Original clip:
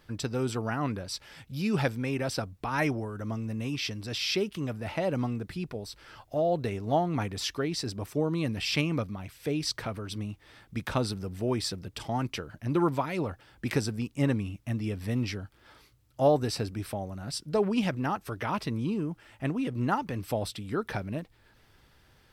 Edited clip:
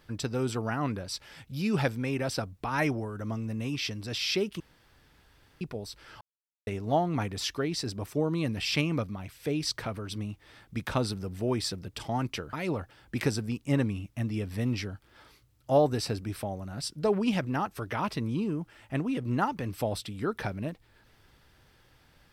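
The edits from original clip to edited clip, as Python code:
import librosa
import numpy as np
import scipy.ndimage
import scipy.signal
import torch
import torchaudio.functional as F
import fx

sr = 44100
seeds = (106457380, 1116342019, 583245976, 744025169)

y = fx.edit(x, sr, fx.room_tone_fill(start_s=4.6, length_s=1.01),
    fx.silence(start_s=6.21, length_s=0.46),
    fx.cut(start_s=12.53, length_s=0.5), tone=tone)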